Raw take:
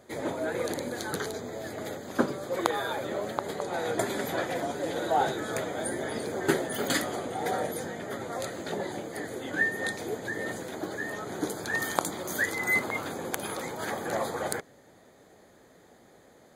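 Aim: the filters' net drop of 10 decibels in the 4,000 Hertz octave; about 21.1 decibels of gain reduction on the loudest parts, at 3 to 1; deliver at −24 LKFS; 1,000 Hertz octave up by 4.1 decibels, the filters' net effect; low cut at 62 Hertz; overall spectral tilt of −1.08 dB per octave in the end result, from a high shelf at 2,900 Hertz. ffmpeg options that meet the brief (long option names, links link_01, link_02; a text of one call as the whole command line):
ffmpeg -i in.wav -af "highpass=62,equalizer=frequency=1000:width_type=o:gain=7,highshelf=frequency=2900:gain=-8.5,equalizer=frequency=4000:width_type=o:gain=-6,acompressor=threshold=-48dB:ratio=3,volume=22.5dB" out.wav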